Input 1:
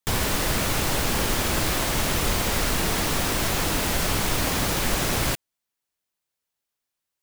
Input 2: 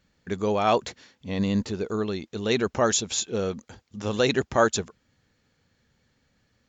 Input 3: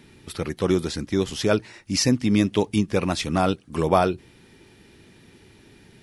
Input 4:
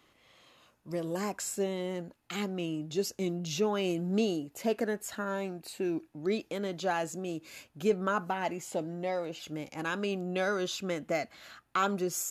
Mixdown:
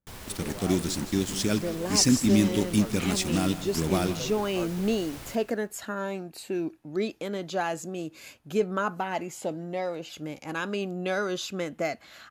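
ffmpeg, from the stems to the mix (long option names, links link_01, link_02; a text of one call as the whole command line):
ffmpeg -i stem1.wav -i stem2.wav -i stem3.wav -i stem4.wav -filter_complex "[0:a]volume=-19dB,asplit=2[link_01][link_02];[link_02]volume=-15dB[link_03];[1:a]lowpass=1100,volume=-16.5dB[link_04];[2:a]equalizer=frequency=250:width_type=o:width=1:gain=6,equalizer=frequency=500:width_type=o:width=1:gain=-7,equalizer=frequency=1000:width_type=o:width=1:gain=-9,equalizer=frequency=8000:width_type=o:width=1:gain=11,acrusher=bits=4:mix=0:aa=0.5,volume=-4.5dB,asplit=2[link_05][link_06];[link_06]volume=-14dB[link_07];[3:a]adelay=700,volume=2dB[link_08];[link_03][link_07]amix=inputs=2:normalize=0,aecho=0:1:161|322|483|644|805:1|0.39|0.152|0.0593|0.0231[link_09];[link_01][link_04][link_05][link_08][link_09]amix=inputs=5:normalize=0" out.wav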